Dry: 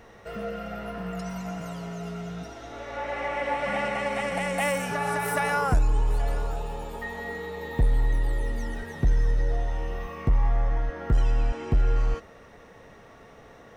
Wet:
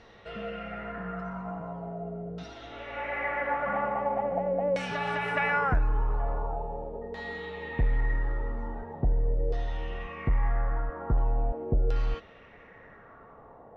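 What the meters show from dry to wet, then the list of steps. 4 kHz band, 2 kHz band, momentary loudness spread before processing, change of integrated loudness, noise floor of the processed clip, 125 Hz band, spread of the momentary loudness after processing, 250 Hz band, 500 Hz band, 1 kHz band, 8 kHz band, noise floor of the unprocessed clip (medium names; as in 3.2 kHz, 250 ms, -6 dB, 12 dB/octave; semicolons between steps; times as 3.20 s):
-5.0 dB, -1.5 dB, 11 LU, -2.5 dB, -52 dBFS, -4.0 dB, 11 LU, -3.5 dB, -1.0 dB, -1.0 dB, under -15 dB, -50 dBFS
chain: LFO low-pass saw down 0.42 Hz 480–4500 Hz; trim -4 dB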